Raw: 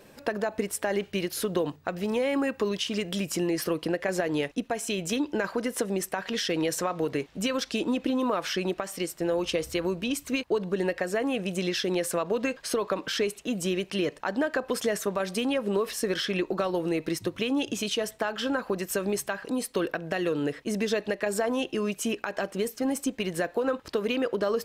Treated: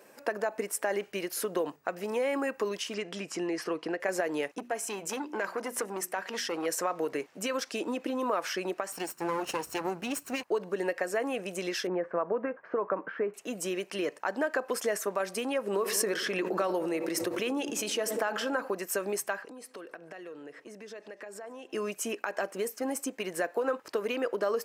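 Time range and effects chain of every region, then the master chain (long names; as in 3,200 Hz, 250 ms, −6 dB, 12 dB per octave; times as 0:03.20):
0:02.94–0:04.00: low-pass filter 5,500 Hz + notch filter 560 Hz, Q 6.1
0:04.58–0:06.66: mains-hum notches 60/120/180/240/300/360 Hz + saturating transformer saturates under 980 Hz
0:08.92–0:10.43: lower of the sound and its delayed copy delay 0.73 ms + low-shelf EQ 200 Hz +8.5 dB
0:11.87–0:13.34: low-pass filter 1,700 Hz 24 dB per octave + parametric band 180 Hz +5 dB 0.32 octaves
0:15.67–0:18.68: delay with a low-pass on its return 97 ms, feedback 68%, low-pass 780 Hz, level −14.5 dB + background raised ahead of every attack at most 32 dB per second
0:19.42–0:21.72: high-shelf EQ 10,000 Hz −11.5 dB + downward compressor 4 to 1, threshold −40 dBFS + repeating echo 144 ms, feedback 55%, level −22.5 dB
whole clip: Bessel high-pass filter 430 Hz, order 2; parametric band 3,600 Hz −9.5 dB 0.75 octaves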